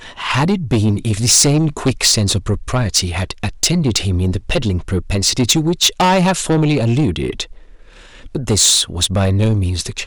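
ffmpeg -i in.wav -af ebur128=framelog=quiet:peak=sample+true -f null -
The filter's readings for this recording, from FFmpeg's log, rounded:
Integrated loudness:
  I:         -15.1 LUFS
  Threshold: -25.5 LUFS
Loudness range:
  LRA:         1.9 LU
  Threshold: -35.7 LUFS
  LRA low:   -16.7 LUFS
  LRA high:  -14.8 LUFS
Sample peak:
  Peak:       -3.0 dBFS
True peak:
  Peak:       -1.9 dBFS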